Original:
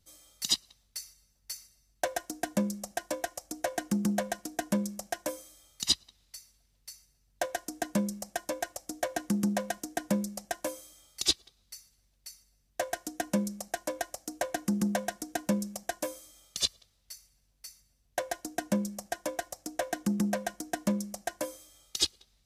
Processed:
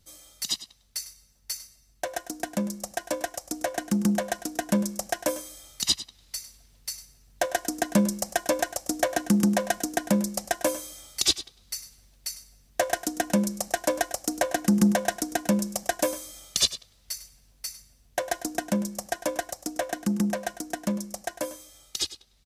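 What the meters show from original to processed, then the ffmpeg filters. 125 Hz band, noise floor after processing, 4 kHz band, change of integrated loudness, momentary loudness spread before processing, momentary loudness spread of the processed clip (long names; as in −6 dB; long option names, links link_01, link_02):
+5.5 dB, −61 dBFS, +3.5 dB, +5.0 dB, 19 LU, 13 LU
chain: -filter_complex "[0:a]alimiter=limit=-22dB:level=0:latency=1:release=450,dynaudnorm=framelen=440:gausssize=21:maxgain=6dB,asplit=2[link_01][link_02];[link_02]aecho=0:1:101:0.178[link_03];[link_01][link_03]amix=inputs=2:normalize=0,volume=6.5dB"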